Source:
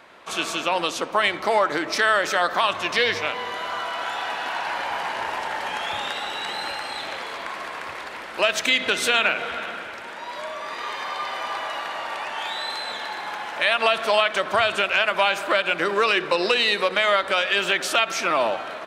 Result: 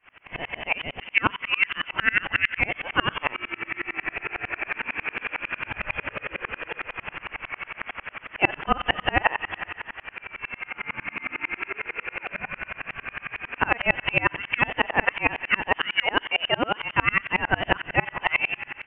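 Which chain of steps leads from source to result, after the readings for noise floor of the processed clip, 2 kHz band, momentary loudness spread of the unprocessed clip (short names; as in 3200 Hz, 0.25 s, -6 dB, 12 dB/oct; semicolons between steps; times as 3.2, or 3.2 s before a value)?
-53 dBFS, -1.0 dB, 12 LU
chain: bell 300 Hz -6.5 dB 1.8 oct; inverted band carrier 3300 Hz; dB-ramp tremolo swelling 11 Hz, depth 32 dB; gain +6.5 dB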